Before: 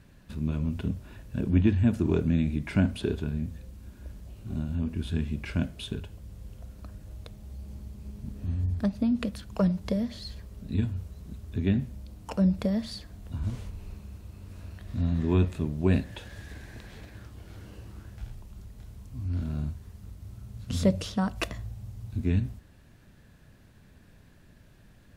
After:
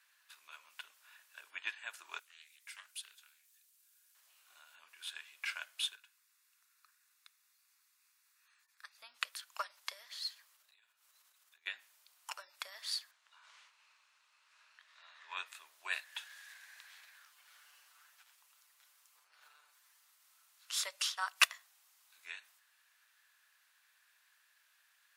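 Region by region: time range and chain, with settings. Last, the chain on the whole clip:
2.19–4.15 pre-emphasis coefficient 0.9 + Doppler distortion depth 0.39 ms
5.96–8.98 ladder high-pass 970 Hz, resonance 20% + notch 3100 Hz, Q 6.7
10.56–11.66 flutter echo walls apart 10.3 m, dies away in 0.27 s + compressor 16:1, threshold -40 dBFS
13.11–15.37 HPF 470 Hz 24 dB/oct + air absorption 94 m + notch 710 Hz, Q 11
17.25–20.08 minimum comb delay 6.8 ms + compressor, threshold -37 dBFS
whole clip: inverse Chebyshev high-pass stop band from 190 Hz, stop band 80 dB; high shelf 9300 Hz +5.5 dB; upward expander 1.5:1, over -53 dBFS; gain +7.5 dB

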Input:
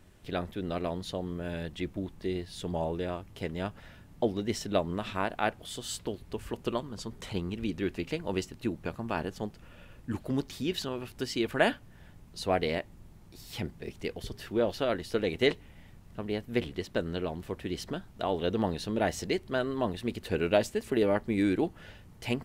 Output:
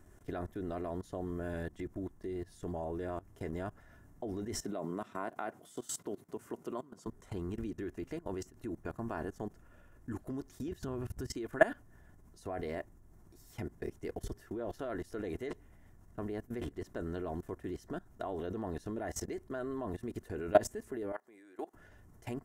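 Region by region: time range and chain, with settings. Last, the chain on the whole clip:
4.64–7.07 HPF 140 Hz 24 dB/oct + notch 1700 Hz, Q 13
10.68–11.33 bell 78 Hz +13 dB 2.3 oct + compressor 2:1, threshold -32 dBFS
21.12–21.74 HPF 600 Hz + compressor 2:1, threshold -42 dBFS
whole clip: band shelf 3300 Hz -12 dB 1.3 oct; comb 2.9 ms, depth 36%; level quantiser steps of 20 dB; gain +2 dB

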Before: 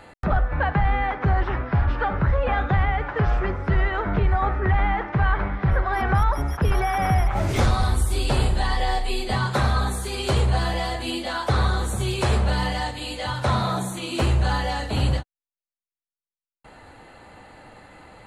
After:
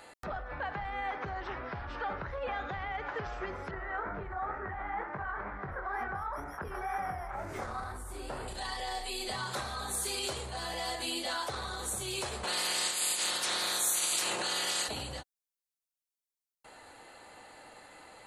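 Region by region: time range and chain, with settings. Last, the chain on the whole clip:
3.71–8.48 resonant high shelf 2300 Hz -11.5 dB, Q 1.5 + chorus 2.1 Hz, delay 20 ms, depth 7.6 ms
12.43–14.87 spectral limiter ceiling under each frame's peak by 29 dB + HPF 87 Hz 24 dB/oct + comb 5.6 ms, depth 42%
whole clip: limiter -20.5 dBFS; tone controls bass -12 dB, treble +9 dB; gain -5.5 dB

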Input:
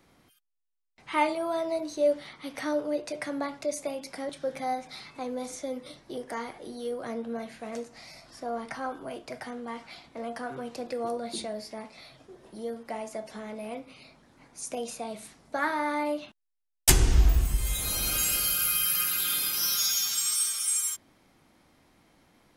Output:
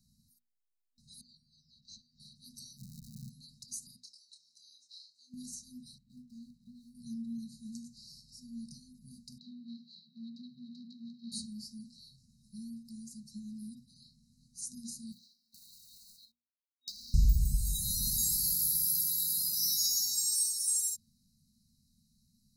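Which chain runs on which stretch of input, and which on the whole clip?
1.21–2.2 LPF 5400 Hz 24 dB/oct + compressor 3:1, threshold -39 dBFS
2.77–3.29 LPF 1400 Hz + low shelf 440 Hz +11.5 dB + crackle 250/s -35 dBFS
3.96–5.34 elliptic high-pass 2800 Hz + air absorption 93 m + doubler 27 ms -7 dB
5.98–6.95 median filter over 9 samples + tone controls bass -5 dB, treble -14 dB
9.38–11.32 self-modulated delay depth 0.32 ms + Chebyshev band-pass 170–4000 Hz, order 4 + high shelf 3300 Hz +8 dB
15.12–17.14 elliptic band-pass 340–4700 Hz + compressor 5:1, threshold -31 dBFS + short-mantissa float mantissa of 2-bit
whole clip: notches 60/120/180/240 Hz; FFT band-reject 250–3800 Hz; dynamic EQ 150 Hz, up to +5 dB, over -55 dBFS, Q 1.8; gain -3 dB

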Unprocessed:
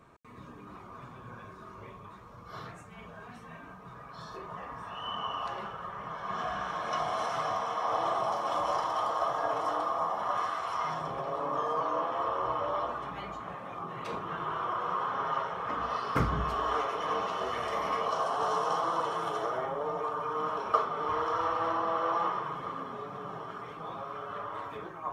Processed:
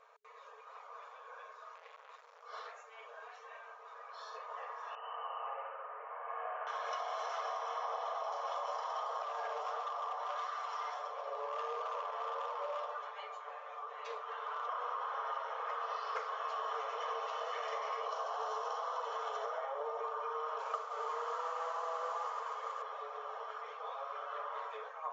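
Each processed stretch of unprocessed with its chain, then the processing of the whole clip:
1.75–2.43 high shelf 2300 Hz +7 dB + core saturation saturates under 1400 Hz
4.95–6.67 steep low-pass 2700 Hz 72 dB/oct + bell 1600 Hz -6.5 dB 2.3 oct + flutter echo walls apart 11.9 m, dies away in 1 s
9.22–14.69 comb 6.8 ms, depth 64% + overloaded stage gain 25.5 dB + flange 1.5 Hz, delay 5.8 ms, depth 9.7 ms, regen +64%
20.58–22.82 LPF 4400 Hz + modulation noise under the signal 19 dB
whole clip: FFT band-pass 420–7400 Hz; compressor 6:1, threshold -33 dBFS; gain -2.5 dB

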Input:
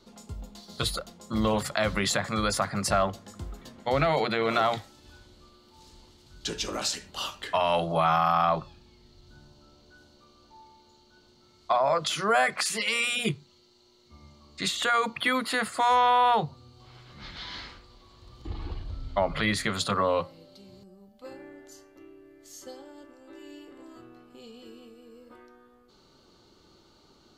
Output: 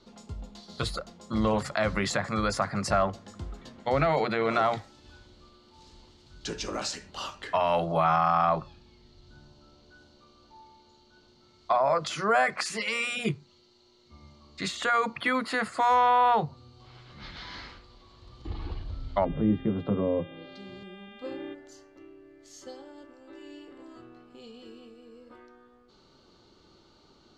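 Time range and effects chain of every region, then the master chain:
19.24–21.53 treble ducked by the level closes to 380 Hz, closed at -25 dBFS + bell 310 Hz +8.5 dB 1.8 oct + buzz 400 Hz, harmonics 9, -52 dBFS 0 dB/oct
whole clip: LPF 6200 Hz 12 dB/oct; dynamic EQ 3400 Hz, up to -7 dB, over -47 dBFS, Q 1.9

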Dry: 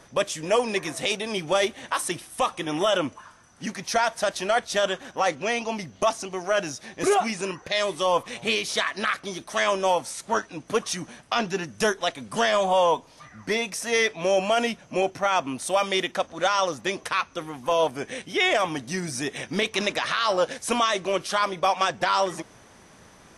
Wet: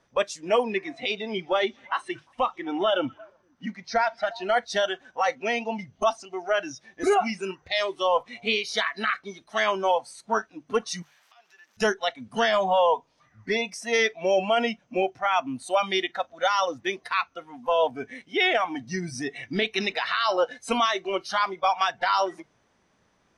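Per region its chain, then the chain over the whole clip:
0.63–4.44 air absorption 81 m + delay with a stepping band-pass 0.117 s, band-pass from 5300 Hz, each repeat -1.4 oct, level -11 dB
11.02–11.77 zero-crossing step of -36.5 dBFS + HPF 1100 Hz + compressor 8:1, threshold -40 dBFS
whole clip: LPF 5900 Hz 12 dB/oct; notches 50/100/150 Hz; spectral noise reduction 15 dB

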